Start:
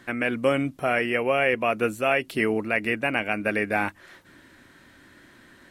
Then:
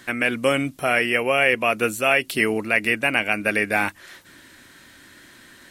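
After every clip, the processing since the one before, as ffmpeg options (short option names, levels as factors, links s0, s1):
-af "highshelf=f=2500:g=11.5,volume=1.12"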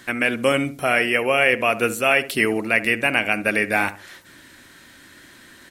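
-filter_complex "[0:a]asplit=2[s0][s1];[s1]adelay=70,lowpass=f=1100:p=1,volume=0.251,asplit=2[s2][s3];[s3]adelay=70,lowpass=f=1100:p=1,volume=0.33,asplit=2[s4][s5];[s5]adelay=70,lowpass=f=1100:p=1,volume=0.33[s6];[s0][s2][s4][s6]amix=inputs=4:normalize=0,volume=1.12"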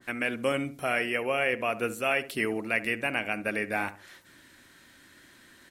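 -af "adynamicequalizer=threshold=0.0355:dfrequency=1700:dqfactor=0.7:tfrequency=1700:tqfactor=0.7:attack=5:release=100:ratio=0.375:range=2:mode=cutabove:tftype=highshelf,volume=0.376"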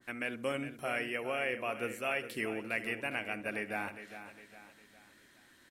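-af "aecho=1:1:408|816|1224|1632:0.266|0.117|0.0515|0.0227,volume=0.422"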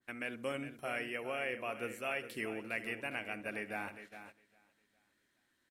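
-af "agate=range=0.251:threshold=0.00355:ratio=16:detection=peak,volume=0.668"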